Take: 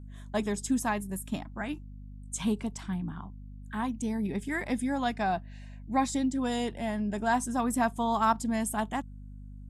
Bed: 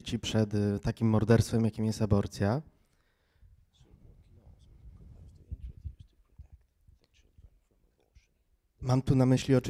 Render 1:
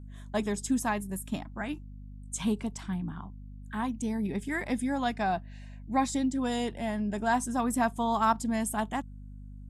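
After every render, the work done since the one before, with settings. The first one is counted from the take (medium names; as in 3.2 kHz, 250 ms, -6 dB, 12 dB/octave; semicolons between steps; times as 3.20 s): no audible change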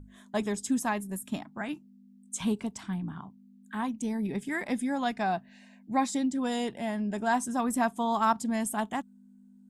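hum notches 50/100/150 Hz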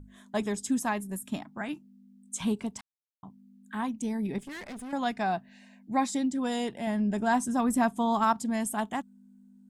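2.81–3.23 s: mute; 4.38–4.93 s: valve stage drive 38 dB, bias 0.65; 6.87–8.24 s: bass shelf 240 Hz +7 dB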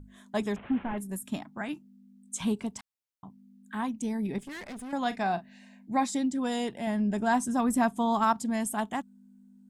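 0.56–0.98 s: one-bit delta coder 16 kbps, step -42.5 dBFS; 5.01–6.03 s: doubling 40 ms -13.5 dB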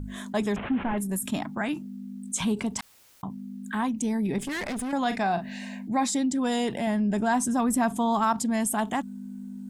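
level flattener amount 50%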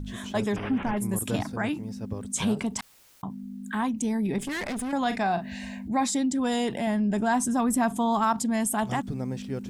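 add bed -8.5 dB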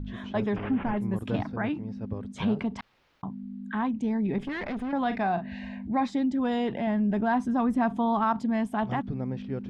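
distance through air 310 m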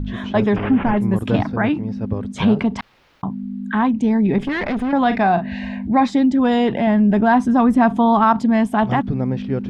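trim +11 dB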